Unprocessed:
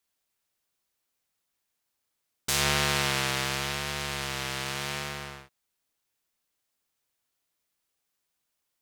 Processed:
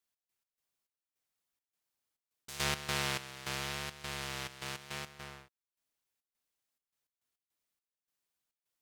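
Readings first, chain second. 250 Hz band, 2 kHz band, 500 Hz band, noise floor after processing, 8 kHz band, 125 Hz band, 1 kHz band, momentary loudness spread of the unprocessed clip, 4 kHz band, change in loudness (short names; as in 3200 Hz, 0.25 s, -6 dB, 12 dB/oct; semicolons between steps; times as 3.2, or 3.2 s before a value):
-9.0 dB, -9.0 dB, -9.0 dB, under -85 dBFS, -10.0 dB, -9.0 dB, -9.0 dB, 13 LU, -9.5 dB, -9.0 dB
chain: step gate "x.x.xx..xxx.xxx." 104 bpm -12 dB; gain -7 dB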